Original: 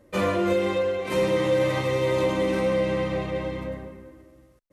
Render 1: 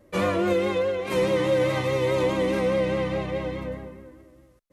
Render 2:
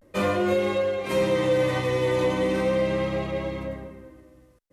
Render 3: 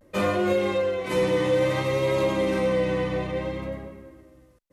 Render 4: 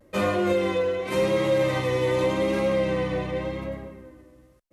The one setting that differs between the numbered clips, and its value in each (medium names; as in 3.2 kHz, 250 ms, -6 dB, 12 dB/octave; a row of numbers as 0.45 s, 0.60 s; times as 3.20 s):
vibrato, rate: 4.8 Hz, 0.37 Hz, 0.58 Hz, 0.87 Hz